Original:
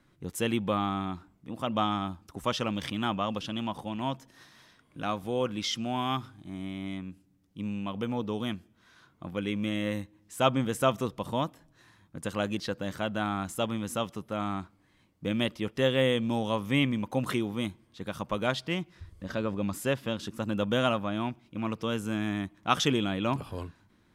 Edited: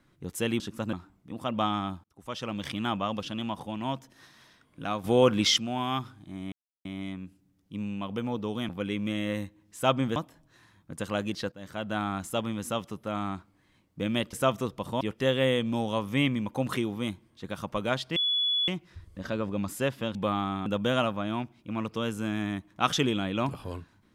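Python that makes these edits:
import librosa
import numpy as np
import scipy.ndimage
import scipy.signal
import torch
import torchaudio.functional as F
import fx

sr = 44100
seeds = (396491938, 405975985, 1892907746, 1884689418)

y = fx.edit(x, sr, fx.swap(start_s=0.6, length_s=0.51, other_s=20.2, other_length_s=0.33),
    fx.fade_in_span(start_s=2.22, length_s=0.67),
    fx.clip_gain(start_s=5.22, length_s=0.54, db=8.5),
    fx.insert_silence(at_s=6.7, length_s=0.33),
    fx.cut(start_s=8.54, length_s=0.72),
    fx.move(start_s=10.73, length_s=0.68, to_s=15.58),
    fx.fade_in_from(start_s=12.77, length_s=0.43, floor_db=-16.0),
    fx.insert_tone(at_s=18.73, length_s=0.52, hz=3410.0, db=-23.5), tone=tone)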